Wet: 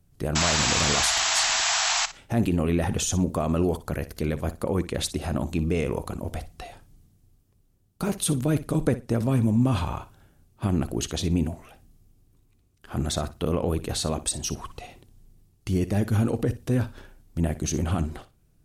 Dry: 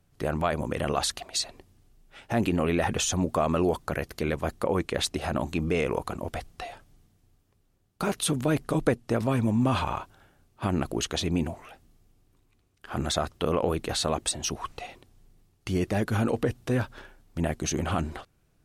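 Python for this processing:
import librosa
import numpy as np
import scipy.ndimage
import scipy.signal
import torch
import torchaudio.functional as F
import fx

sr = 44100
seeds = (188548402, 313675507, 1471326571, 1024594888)

y = fx.high_shelf(x, sr, hz=4700.0, db=11.0)
y = fx.spec_paint(y, sr, seeds[0], shape='noise', start_s=0.35, length_s=1.71, low_hz=630.0, high_hz=7900.0, level_db=-18.0)
y = fx.low_shelf(y, sr, hz=410.0, db=12.0)
y = fx.room_flutter(y, sr, wall_m=10.2, rt60_s=0.24)
y = F.gain(torch.from_numpy(y), -6.5).numpy()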